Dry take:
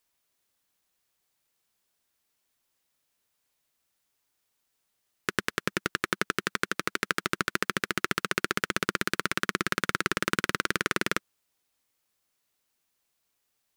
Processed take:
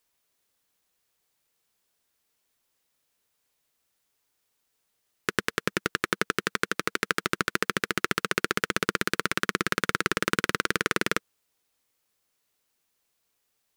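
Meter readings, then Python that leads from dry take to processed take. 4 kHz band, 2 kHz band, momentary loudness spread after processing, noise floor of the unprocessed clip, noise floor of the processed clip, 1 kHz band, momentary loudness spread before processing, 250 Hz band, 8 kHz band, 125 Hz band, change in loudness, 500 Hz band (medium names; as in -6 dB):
+1.5 dB, +1.5 dB, 3 LU, -78 dBFS, -76 dBFS, +1.5 dB, 3 LU, +1.5 dB, +1.5 dB, +1.5 dB, +1.5 dB, +3.0 dB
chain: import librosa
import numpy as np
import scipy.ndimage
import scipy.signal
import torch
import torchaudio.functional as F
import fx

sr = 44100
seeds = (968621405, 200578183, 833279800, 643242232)

y = fx.peak_eq(x, sr, hz=460.0, db=4.0, octaves=0.26)
y = y * 10.0 ** (1.5 / 20.0)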